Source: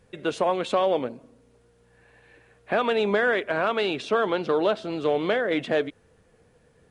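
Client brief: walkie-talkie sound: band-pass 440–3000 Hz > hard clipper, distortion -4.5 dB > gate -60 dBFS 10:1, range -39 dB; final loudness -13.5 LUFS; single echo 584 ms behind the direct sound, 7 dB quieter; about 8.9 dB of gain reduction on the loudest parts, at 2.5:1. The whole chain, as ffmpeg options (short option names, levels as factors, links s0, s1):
-af "acompressor=threshold=0.0251:ratio=2.5,highpass=440,lowpass=3000,aecho=1:1:584:0.447,asoftclip=type=hard:threshold=0.0106,agate=range=0.0112:threshold=0.001:ratio=10,volume=26.6"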